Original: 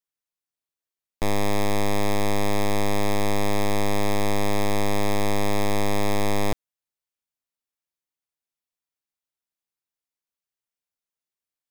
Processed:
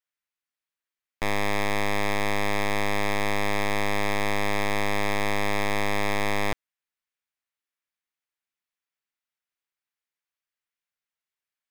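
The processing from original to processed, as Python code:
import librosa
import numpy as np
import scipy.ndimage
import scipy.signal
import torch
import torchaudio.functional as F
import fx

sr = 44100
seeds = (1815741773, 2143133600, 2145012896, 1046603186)

y = fx.peak_eq(x, sr, hz=1900.0, db=11.0, octaves=2.0)
y = y * 10.0 ** (-5.5 / 20.0)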